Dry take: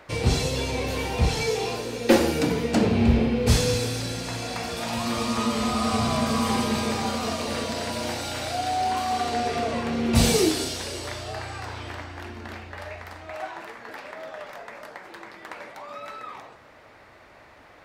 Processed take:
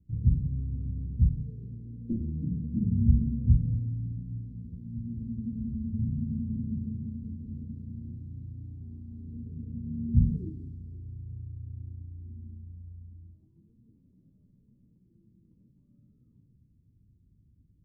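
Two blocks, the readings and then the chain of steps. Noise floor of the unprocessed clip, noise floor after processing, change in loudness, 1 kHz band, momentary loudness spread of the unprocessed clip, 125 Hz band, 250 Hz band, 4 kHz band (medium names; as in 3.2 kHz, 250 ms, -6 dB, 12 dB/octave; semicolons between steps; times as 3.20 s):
-51 dBFS, -65 dBFS, -7.0 dB, under -40 dB, 18 LU, -0.5 dB, -8.0 dB, under -40 dB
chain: inverse Chebyshev low-pass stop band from 640 Hz, stop band 60 dB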